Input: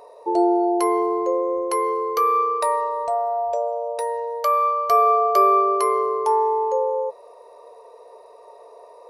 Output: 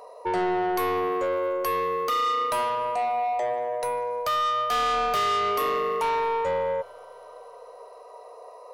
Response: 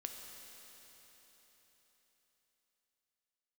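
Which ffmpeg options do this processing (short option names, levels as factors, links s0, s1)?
-filter_complex "[0:a]equalizer=f=130:w=1.2:g=-13,asoftclip=type=tanh:threshold=0.0708,asplit=2[s0][s1];[1:a]atrim=start_sample=2205[s2];[s1][s2]afir=irnorm=-1:irlink=0,volume=0.211[s3];[s0][s3]amix=inputs=2:normalize=0,asetrate=45938,aresample=44100"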